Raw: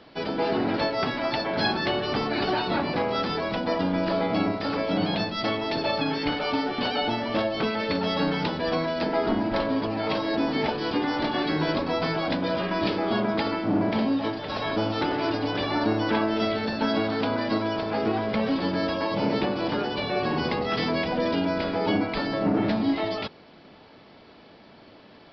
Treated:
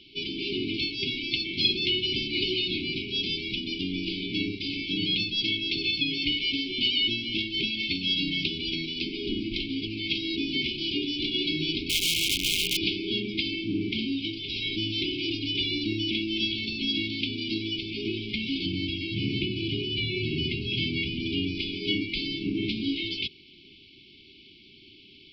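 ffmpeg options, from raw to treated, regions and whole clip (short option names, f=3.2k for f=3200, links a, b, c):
-filter_complex "[0:a]asettb=1/sr,asplit=3[a][b][c];[a]atrim=end=11.894[d];[b]atrim=start=11.89:end=12.77,asetpts=PTS-STARTPTS,afade=t=in:d=0.004:c=qsin,afade=t=out:st=0.876:d=0.004:c=qsin,highshelf=f=5.1k:g=7.5,bandreject=f=50:t=h:w=6,bandreject=f=100:t=h:w=6,bandreject=f=150:t=h:w=6,bandreject=f=200:t=h:w=6,bandreject=f=250:t=h:w=6,bandreject=f=300:t=h:w=6,aeval=exprs='(mod(11.2*val(0)+1,2)-1)/11.2':c=same[e];[c]atrim=start=12.766[f];[d][e]acrossfade=d=0.004:c1=hsin:c2=qsin[g];[g][f]acrossfade=d=0.004:c1=qsin:c2=hsin,asettb=1/sr,asplit=3[h][i][j];[h]atrim=end=18.664[k];[i]atrim=start=18.66:end=21.55,asetpts=PTS-STARTPTS,afade=t=in:d=0.004:c=qsin,afade=t=out:st=2.886:d=0.004:c=qsin,acrossover=split=3900[l][m];[m]acompressor=threshold=-53dB:ratio=4:attack=1:release=60[n];[l][n]amix=inputs=2:normalize=0,equalizer=f=110:w=1.5:g=11,bandreject=f=3.6k:w=23[o];[j]atrim=start=21.546[p];[k][o]acrossfade=d=0.004:c1=hsin:c2=qsin[q];[q][p]acrossfade=d=0.004:c1=qsin:c2=hsin,equalizer=f=3.1k:w=2.1:g=9.5,afftfilt=real='re*(1-between(b*sr/4096,410,2100))':imag='im*(1-between(b*sr/4096,410,2100))':win_size=4096:overlap=0.75,equalizer=f=200:w=1:g=-7.5"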